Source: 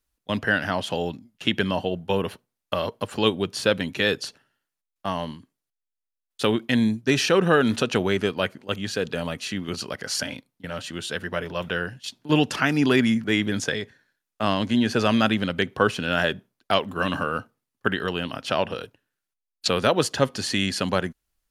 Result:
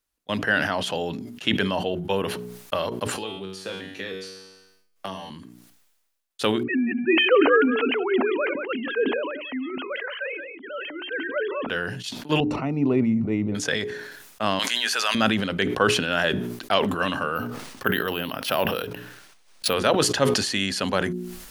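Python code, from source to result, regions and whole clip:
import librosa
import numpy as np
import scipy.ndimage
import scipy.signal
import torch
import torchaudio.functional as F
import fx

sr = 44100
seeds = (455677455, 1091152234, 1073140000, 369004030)

y = fx.chain(x, sr, fx.peak_eq(hz=400.0, db=4.0, octaves=0.99),
    fx.comb_fb(f0_hz=95.0, decay_s=0.58, harmonics='all', damping=0.0, mix_pct=90),
    fx.band_squash(depth_pct=100), at=(3.12, 5.3))
y = fx.chain(y, sr, fx.sine_speech(),
    fx.echo_single(ms=179, db=-16.0),
    fx.sustainer(db_per_s=39.0), at=(6.63, 11.69))
y = fx.chain(y, sr, fx.moving_average(points=27),
    fx.low_shelf(hz=98.0, db=11.5), at=(12.4, 13.55))
y = fx.chain(y, sr, fx.highpass(hz=1100.0, slope=12),
    fx.high_shelf(hz=7100.0, db=9.0),
    fx.env_flatten(amount_pct=70), at=(14.59, 15.15))
y = fx.chain(y, sr, fx.resample_bad(factor=3, down='filtered', up='hold'),
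    fx.pre_swell(db_per_s=140.0), at=(17.35, 19.74))
y = fx.low_shelf(y, sr, hz=160.0, db=-7.5)
y = fx.hum_notches(y, sr, base_hz=60, count=7)
y = fx.sustainer(y, sr, db_per_s=45.0)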